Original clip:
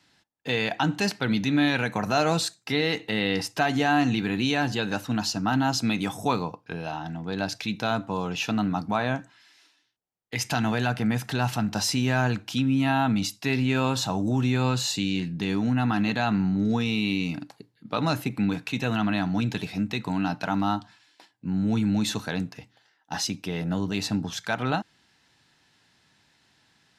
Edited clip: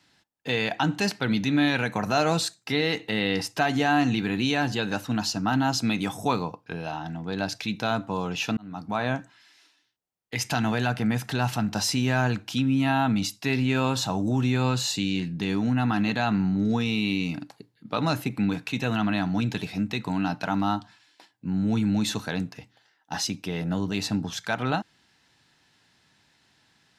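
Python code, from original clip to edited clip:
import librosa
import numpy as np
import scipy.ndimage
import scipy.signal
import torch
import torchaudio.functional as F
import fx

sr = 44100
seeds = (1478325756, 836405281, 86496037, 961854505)

y = fx.edit(x, sr, fx.fade_in_span(start_s=8.57, length_s=0.5), tone=tone)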